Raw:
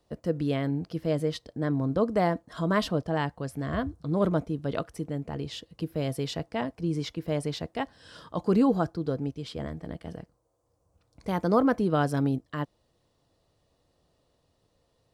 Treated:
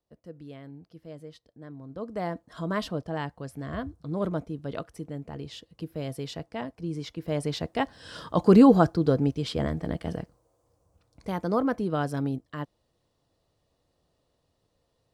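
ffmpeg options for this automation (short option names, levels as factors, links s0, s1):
-af "volume=2.24,afade=t=in:st=1.87:d=0.58:silence=0.251189,afade=t=in:st=7.06:d=1.21:silence=0.281838,afade=t=out:st=10.16:d=1.23:silence=0.316228"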